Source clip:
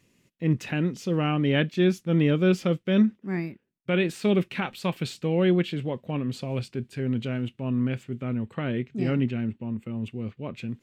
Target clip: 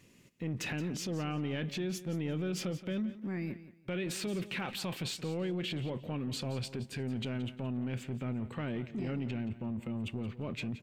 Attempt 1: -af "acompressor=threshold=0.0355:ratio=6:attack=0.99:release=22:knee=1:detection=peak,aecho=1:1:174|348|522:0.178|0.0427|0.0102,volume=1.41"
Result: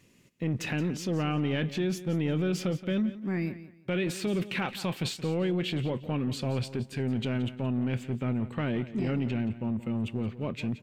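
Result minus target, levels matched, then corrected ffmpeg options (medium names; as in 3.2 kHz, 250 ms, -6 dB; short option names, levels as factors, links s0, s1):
compression: peak gain reduction -6.5 dB
-af "acompressor=threshold=0.0141:ratio=6:attack=0.99:release=22:knee=1:detection=peak,aecho=1:1:174|348|522:0.178|0.0427|0.0102,volume=1.41"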